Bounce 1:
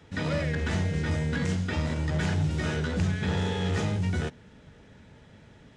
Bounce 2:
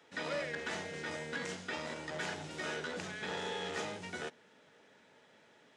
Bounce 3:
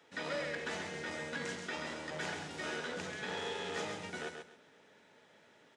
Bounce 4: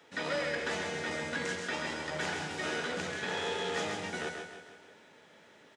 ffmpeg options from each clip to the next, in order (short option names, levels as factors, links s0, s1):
-af "highpass=420,volume=0.596"
-af "aecho=1:1:133|266|399:0.501|0.115|0.0265,volume=0.891"
-af "aecho=1:1:156|312|468|624|780|936:0.355|0.181|0.0923|0.0471|0.024|0.0122,volume=1.68"